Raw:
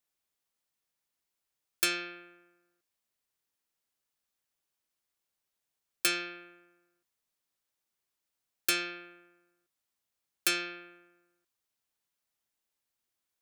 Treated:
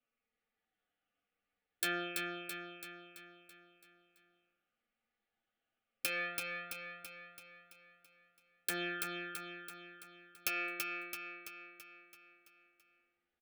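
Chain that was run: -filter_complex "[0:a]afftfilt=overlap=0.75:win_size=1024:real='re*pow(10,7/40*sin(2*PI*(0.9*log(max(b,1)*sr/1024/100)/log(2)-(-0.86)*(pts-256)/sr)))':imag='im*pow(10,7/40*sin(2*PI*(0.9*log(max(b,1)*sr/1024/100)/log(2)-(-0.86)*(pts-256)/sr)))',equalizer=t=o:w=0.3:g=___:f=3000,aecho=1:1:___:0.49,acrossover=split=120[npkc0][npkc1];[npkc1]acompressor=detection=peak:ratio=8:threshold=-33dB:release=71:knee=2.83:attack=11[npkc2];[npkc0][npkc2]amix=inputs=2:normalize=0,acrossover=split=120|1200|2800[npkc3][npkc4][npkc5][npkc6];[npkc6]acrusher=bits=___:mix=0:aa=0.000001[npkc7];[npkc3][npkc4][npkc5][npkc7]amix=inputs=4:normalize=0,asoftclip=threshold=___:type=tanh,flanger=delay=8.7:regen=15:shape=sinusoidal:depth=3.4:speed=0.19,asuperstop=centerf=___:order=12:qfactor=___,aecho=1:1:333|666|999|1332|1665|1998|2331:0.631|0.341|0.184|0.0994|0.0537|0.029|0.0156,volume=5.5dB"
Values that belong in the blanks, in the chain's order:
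3.5, 4.1, 4, -24.5dB, 1000, 5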